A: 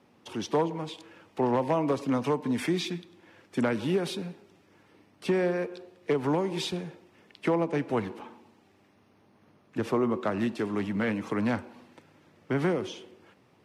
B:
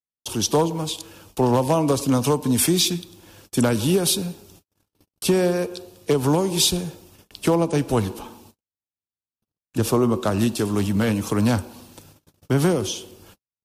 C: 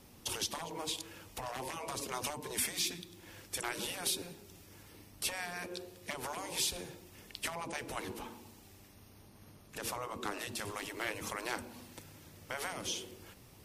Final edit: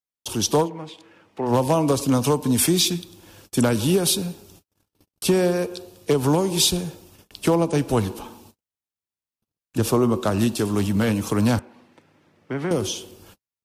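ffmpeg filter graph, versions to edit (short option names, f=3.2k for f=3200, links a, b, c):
-filter_complex "[0:a]asplit=2[a][b];[1:a]asplit=3[c][d][e];[c]atrim=end=0.7[f];[a]atrim=start=0.6:end=1.54[g];[d]atrim=start=1.44:end=11.592[h];[b]atrim=start=11.588:end=12.712[i];[e]atrim=start=12.708[j];[f][g]acrossfade=d=0.1:c1=tri:c2=tri[k];[k][h]acrossfade=d=0.1:c1=tri:c2=tri[l];[l][i]acrossfade=d=0.004:c1=hsin:c2=hsin[m];[m][j]acrossfade=d=0.004:c1=hsin:c2=hsin"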